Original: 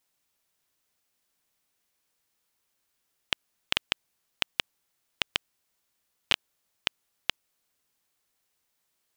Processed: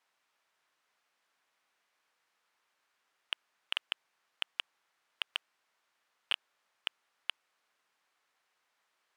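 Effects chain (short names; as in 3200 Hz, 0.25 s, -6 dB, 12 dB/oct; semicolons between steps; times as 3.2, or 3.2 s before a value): hard clip -20.5 dBFS, distortion -3 dB; band-pass 1300 Hz, Q 0.86; gain +8 dB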